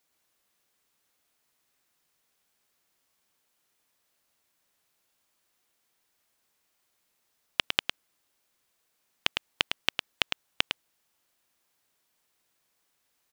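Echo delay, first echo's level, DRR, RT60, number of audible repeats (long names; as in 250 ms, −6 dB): 106 ms, −6.0 dB, no reverb audible, no reverb audible, 1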